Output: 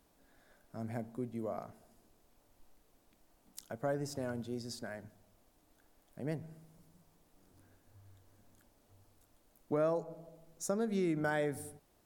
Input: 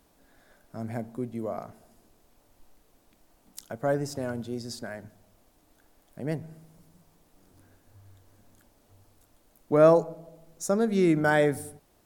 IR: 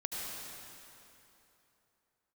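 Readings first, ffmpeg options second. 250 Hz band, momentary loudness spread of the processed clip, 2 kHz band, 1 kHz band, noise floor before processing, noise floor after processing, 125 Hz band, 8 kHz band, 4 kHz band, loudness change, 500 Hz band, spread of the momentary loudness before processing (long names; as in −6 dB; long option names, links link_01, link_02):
−10.0 dB, 20 LU, −11.0 dB, −11.5 dB, −65 dBFS, −71 dBFS, −9.5 dB, −6.5 dB, −8.0 dB, −11.5 dB, −12.0 dB, 20 LU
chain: -af "acompressor=threshold=-25dB:ratio=3,volume=-6dB"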